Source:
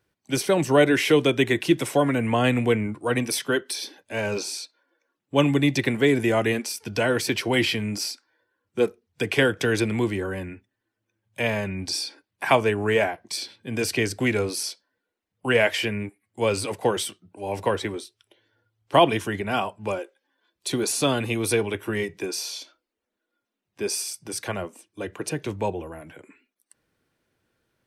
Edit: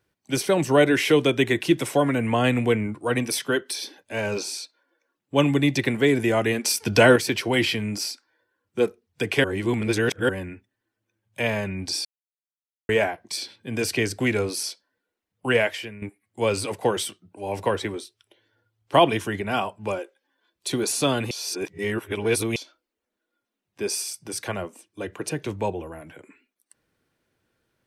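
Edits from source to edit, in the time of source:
6.65–7.16 s: gain +8 dB
9.44–10.29 s: reverse
12.05–12.89 s: mute
15.55–16.02 s: fade out quadratic, to -12.5 dB
21.31–22.56 s: reverse

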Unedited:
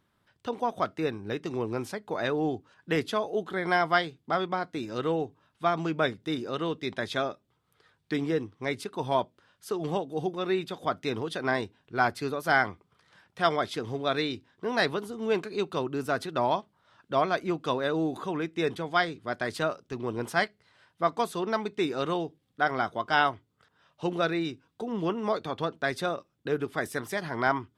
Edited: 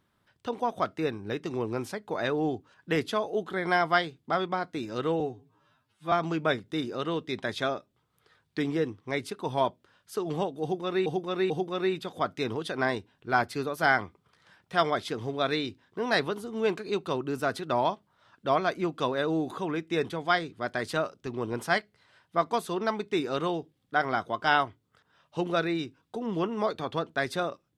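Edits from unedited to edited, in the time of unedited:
5.20–5.66 s: stretch 2×
10.16–10.60 s: loop, 3 plays

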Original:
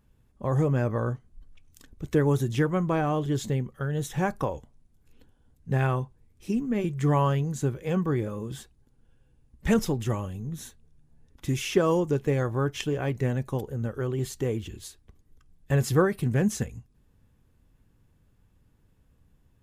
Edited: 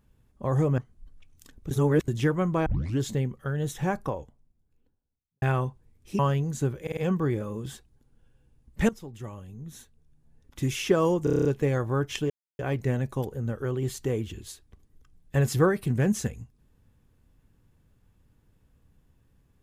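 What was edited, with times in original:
0.78–1.13 s: delete
2.06–2.43 s: reverse
3.01 s: tape start 0.33 s
3.89–5.77 s: studio fade out
6.54–7.20 s: delete
7.83 s: stutter 0.05 s, 4 plays
9.75–11.56 s: fade in, from -19 dB
12.10 s: stutter 0.03 s, 8 plays
12.95 s: insert silence 0.29 s

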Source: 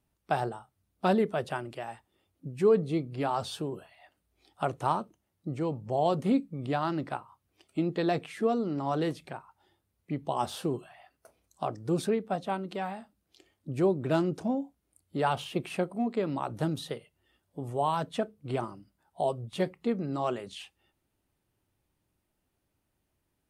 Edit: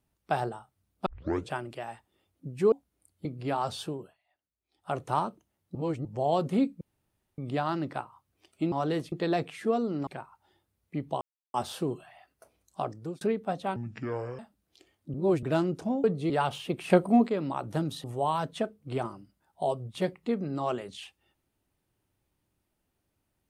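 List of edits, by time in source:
1.06 s: tape start 0.46 s
2.72–2.98 s: swap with 14.63–15.16 s
3.60–4.73 s: dip -19 dB, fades 0.31 s
5.48–5.78 s: reverse
6.54 s: insert room tone 0.57 s
8.83–9.23 s: move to 7.88 s
10.37 s: insert silence 0.33 s
11.73–12.04 s: fade out
12.59–12.98 s: speed 62%
13.73–14.02 s: reverse
15.76–16.14 s: gain +9 dB
16.90–17.62 s: delete

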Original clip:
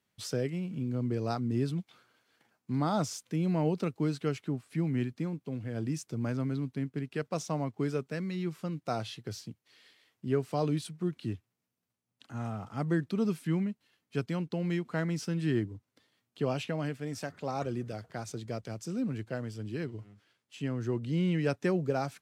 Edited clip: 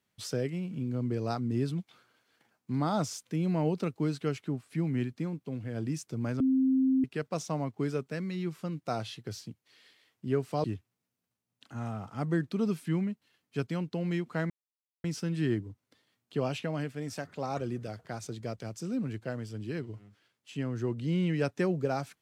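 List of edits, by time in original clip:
6.40–7.04 s: bleep 263 Hz -22 dBFS
10.64–11.23 s: delete
15.09 s: insert silence 0.54 s

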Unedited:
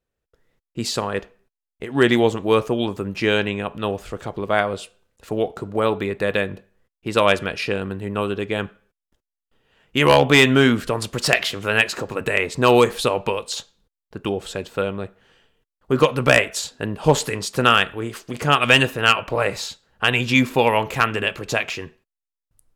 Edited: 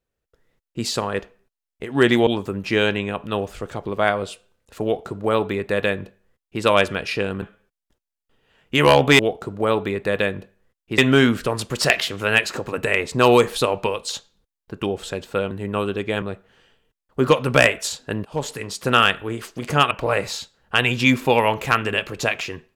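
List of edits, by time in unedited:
2.27–2.78 s: delete
5.34–7.13 s: copy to 10.41 s
7.93–8.64 s: move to 14.94 s
16.97–17.76 s: fade in, from -15 dB
18.63–19.20 s: delete

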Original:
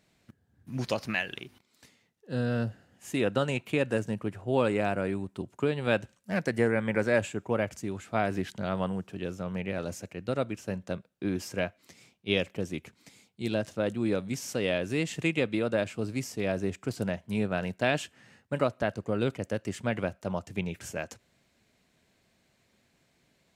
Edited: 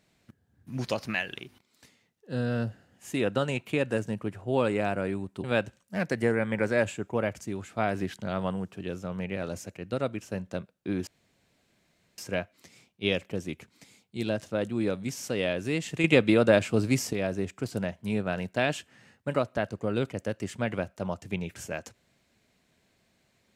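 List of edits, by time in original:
5.44–5.80 s: delete
11.43 s: insert room tone 1.11 s
15.29–16.38 s: gain +7.5 dB

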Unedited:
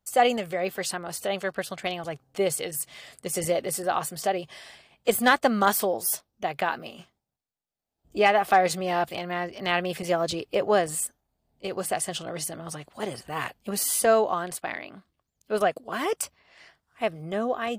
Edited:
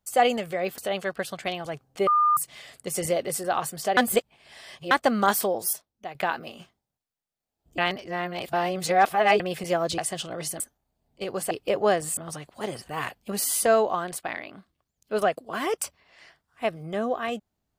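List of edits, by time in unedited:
0.78–1.17 s: delete
2.46–2.76 s: bleep 1.21 kHz -17 dBFS
4.36–5.30 s: reverse
6.12–6.54 s: gain -8 dB
8.17–9.79 s: reverse
10.37–11.03 s: swap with 11.94–12.56 s

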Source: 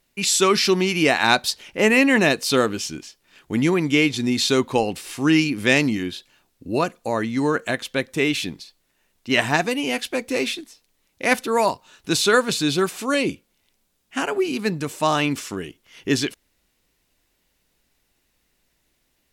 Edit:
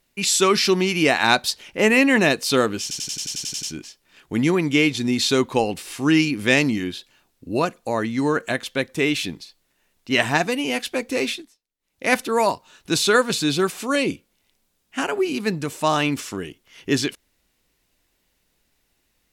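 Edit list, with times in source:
2.82 s: stutter 0.09 s, 10 plays
10.48–11.27 s: dip -22 dB, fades 0.29 s

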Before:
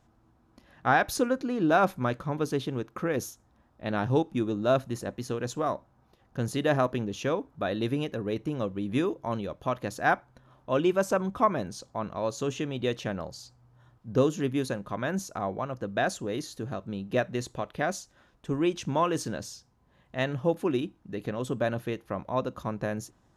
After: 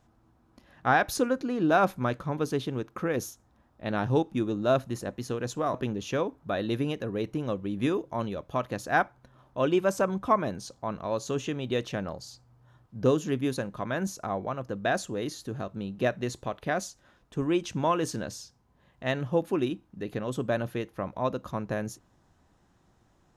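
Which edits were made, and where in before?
5.74–6.86 s: delete

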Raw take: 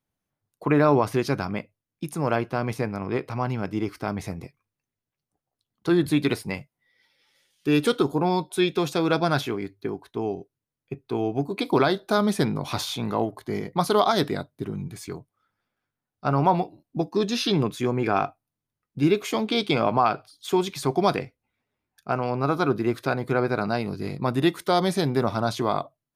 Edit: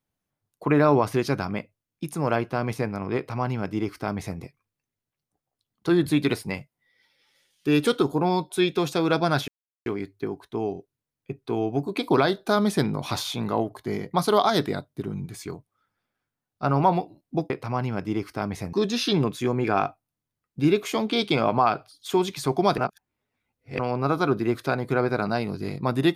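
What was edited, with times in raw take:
3.16–4.39 s: copy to 17.12 s
9.48 s: insert silence 0.38 s
21.17–22.18 s: reverse

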